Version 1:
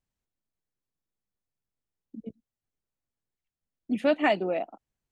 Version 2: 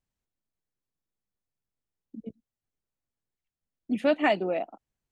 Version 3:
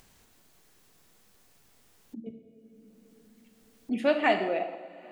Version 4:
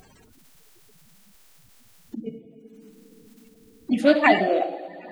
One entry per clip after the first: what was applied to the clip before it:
nothing audible
low shelf 160 Hz -8 dB; two-slope reverb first 0.9 s, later 3.3 s, from -20 dB, DRR 5 dB; upward compressor, threshold -38 dBFS
bin magnitudes rounded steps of 30 dB; gain +8 dB

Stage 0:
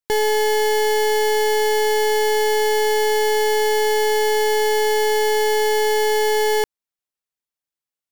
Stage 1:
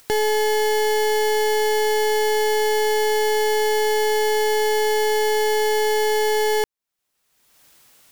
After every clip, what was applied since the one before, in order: upward compressor, threshold -22 dBFS; gain -1.5 dB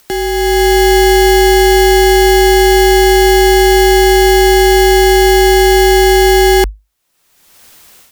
frequency shift -51 Hz; AGC gain up to 9.5 dB; gain +3 dB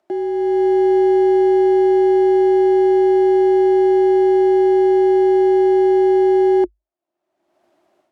double band-pass 470 Hz, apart 0.82 oct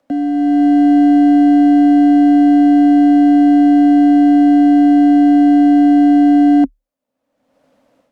frequency shift -87 Hz; gain +4.5 dB

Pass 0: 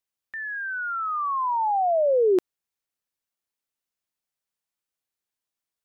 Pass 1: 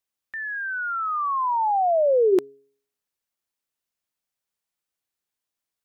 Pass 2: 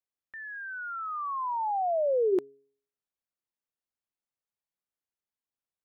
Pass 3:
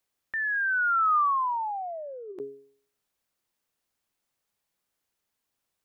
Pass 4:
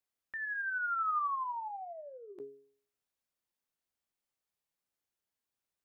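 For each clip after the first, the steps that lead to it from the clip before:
de-hum 137.9 Hz, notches 3; gain +1.5 dB
high shelf 2200 Hz -9 dB; gain -6.5 dB
negative-ratio compressor -34 dBFS, ratio -0.5; gain +7.5 dB
resonator 58 Hz, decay 0.18 s, harmonics all, mix 60%; gain -6.5 dB

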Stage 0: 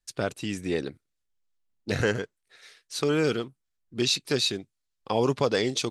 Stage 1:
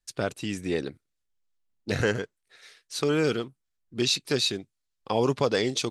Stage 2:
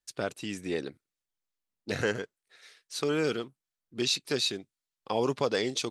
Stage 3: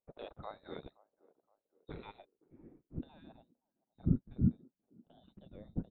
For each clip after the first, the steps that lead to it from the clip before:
nothing audible
low shelf 100 Hz -12 dB; gain -3 dB
inverted band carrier 4000 Hz; band-limited delay 0.52 s, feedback 45%, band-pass 570 Hz, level -22 dB; low-pass sweep 620 Hz -> 200 Hz, 1.42–3.73; gain +1 dB

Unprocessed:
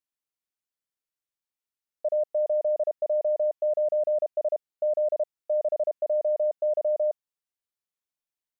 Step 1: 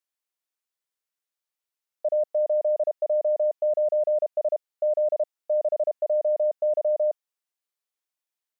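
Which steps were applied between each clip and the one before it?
HPF 390 Hz 12 dB/oct; gain +2.5 dB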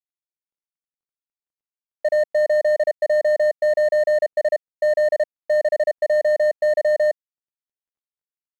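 median filter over 41 samples; gain +7.5 dB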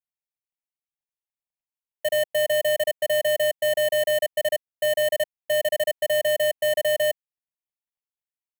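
half-waves squared off; fixed phaser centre 1400 Hz, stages 6; gain -3 dB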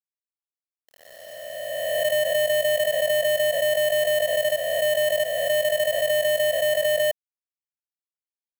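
spectral swells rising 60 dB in 2.51 s; sample gate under -41.5 dBFS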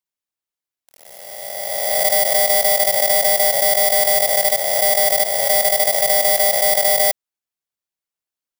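FFT order left unsorted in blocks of 32 samples; gain +6 dB

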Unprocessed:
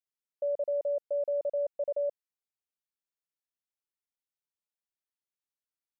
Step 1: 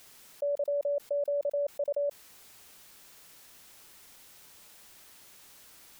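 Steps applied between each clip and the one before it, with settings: fast leveller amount 70%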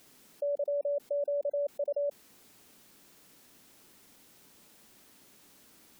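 bell 250 Hz +12 dB 1.8 oct; spectral gate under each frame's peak -30 dB strong; gain -5.5 dB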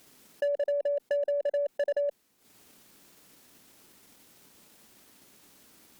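transient shaper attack +8 dB, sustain -12 dB; added harmonics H 4 -45 dB, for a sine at -25.5 dBFS; gain +1.5 dB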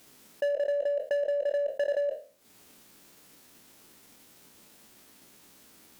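spectral trails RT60 0.38 s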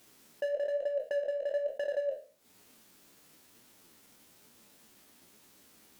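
flange 1.1 Hz, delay 7.8 ms, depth 7.6 ms, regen +49%

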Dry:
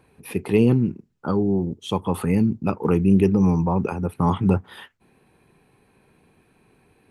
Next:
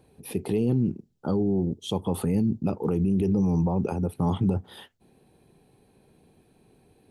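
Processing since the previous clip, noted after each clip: band shelf 1600 Hz -9 dB; limiter -16 dBFS, peak gain reduction 9.5 dB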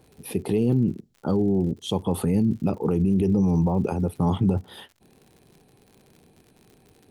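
crackle 88/s -44 dBFS; gain +2.5 dB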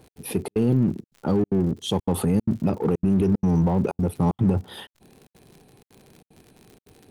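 step gate "x.xxxx.xxxxx" 188 bpm -60 dB; in parallel at -5.5 dB: hard clip -30 dBFS, distortion -5 dB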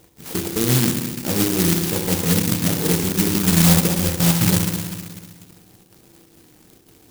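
reverb RT60 1.5 s, pre-delay 3 ms, DRR 1.5 dB; careless resampling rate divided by 2×, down none, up zero stuff; clock jitter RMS 0.15 ms; gain -2 dB

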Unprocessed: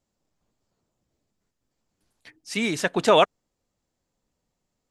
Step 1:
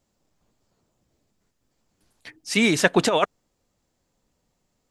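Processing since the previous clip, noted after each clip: negative-ratio compressor -19 dBFS, ratio -0.5; gain +3.5 dB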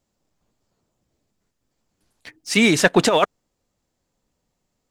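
sample leveller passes 1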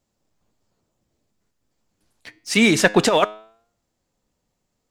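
flange 0.81 Hz, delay 8.5 ms, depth 1.4 ms, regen +90%; gain +4.5 dB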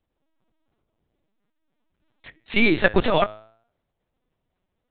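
LPC vocoder at 8 kHz pitch kept; gain -2 dB

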